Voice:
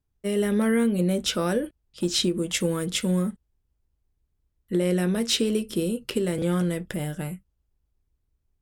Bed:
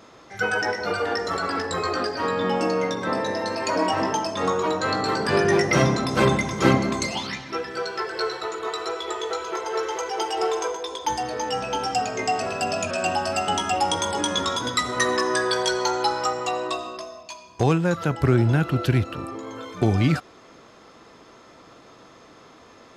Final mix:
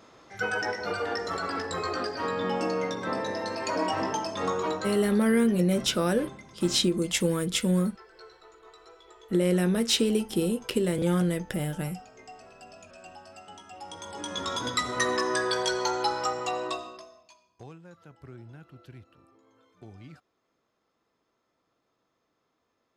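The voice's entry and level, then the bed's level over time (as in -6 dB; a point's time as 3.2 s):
4.60 s, -0.5 dB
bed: 4.72 s -5.5 dB
5.28 s -23.5 dB
13.69 s -23.5 dB
14.6 s -4.5 dB
16.71 s -4.5 dB
17.73 s -27.5 dB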